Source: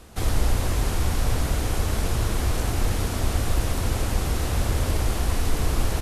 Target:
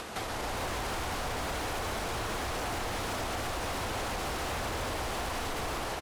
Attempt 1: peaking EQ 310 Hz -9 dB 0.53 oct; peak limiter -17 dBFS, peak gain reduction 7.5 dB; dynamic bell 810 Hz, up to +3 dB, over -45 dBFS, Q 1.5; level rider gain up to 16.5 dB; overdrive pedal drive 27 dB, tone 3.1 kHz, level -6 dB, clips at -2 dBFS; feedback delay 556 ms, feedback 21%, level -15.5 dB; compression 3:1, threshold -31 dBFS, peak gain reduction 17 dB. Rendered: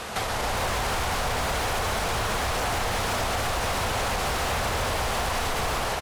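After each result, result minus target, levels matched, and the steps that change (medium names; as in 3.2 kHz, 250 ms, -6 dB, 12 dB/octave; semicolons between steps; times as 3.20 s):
compression: peak gain reduction -8 dB; 250 Hz band -3.5 dB
change: compression 3:1, threshold -42.5 dBFS, peak gain reduction 25 dB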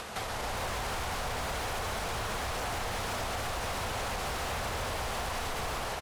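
250 Hz band -3.5 dB
remove: peaking EQ 310 Hz -9 dB 0.53 oct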